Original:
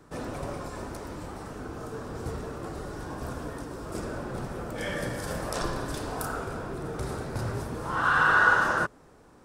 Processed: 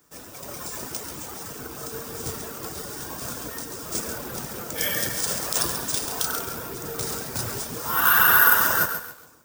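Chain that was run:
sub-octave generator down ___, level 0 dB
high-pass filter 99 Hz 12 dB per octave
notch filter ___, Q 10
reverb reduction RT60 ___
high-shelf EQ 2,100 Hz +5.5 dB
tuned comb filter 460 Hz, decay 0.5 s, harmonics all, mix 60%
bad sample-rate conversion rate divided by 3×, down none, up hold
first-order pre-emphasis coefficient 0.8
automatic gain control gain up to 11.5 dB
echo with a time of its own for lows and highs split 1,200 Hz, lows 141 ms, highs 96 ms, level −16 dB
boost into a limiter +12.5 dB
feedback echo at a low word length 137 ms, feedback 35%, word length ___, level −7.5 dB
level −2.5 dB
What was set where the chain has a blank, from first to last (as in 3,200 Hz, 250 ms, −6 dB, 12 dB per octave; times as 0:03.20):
2 octaves, 4,200 Hz, 0.75 s, 6 bits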